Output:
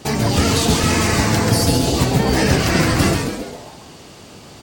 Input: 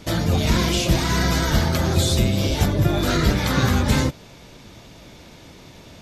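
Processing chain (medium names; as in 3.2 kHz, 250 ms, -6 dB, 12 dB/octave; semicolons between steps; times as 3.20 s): on a send: frequency-shifting echo 175 ms, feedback 48%, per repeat -150 Hz, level -4 dB; on the sum: wide varispeed 1.3×; high-pass 96 Hz 6 dB/octave; trim +3 dB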